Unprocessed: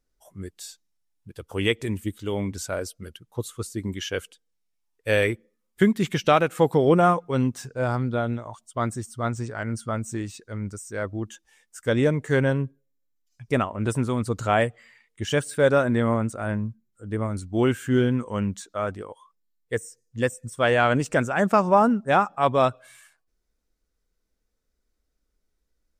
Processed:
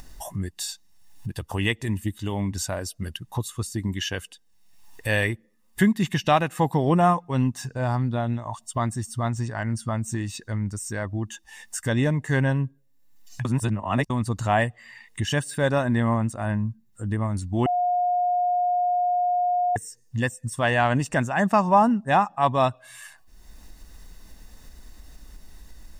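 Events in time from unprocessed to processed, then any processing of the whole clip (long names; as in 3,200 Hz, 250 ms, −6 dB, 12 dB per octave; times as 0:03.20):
0:13.45–0:14.10: reverse
0:17.66–0:19.76: beep over 715 Hz −21 dBFS
whole clip: upward compression, threshold −22 dBFS; comb filter 1.1 ms, depth 58%; level −1 dB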